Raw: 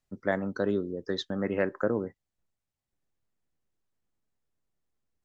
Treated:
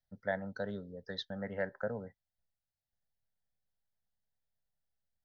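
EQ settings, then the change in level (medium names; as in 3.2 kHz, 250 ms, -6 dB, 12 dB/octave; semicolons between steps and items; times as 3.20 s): static phaser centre 1.7 kHz, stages 8; -5.0 dB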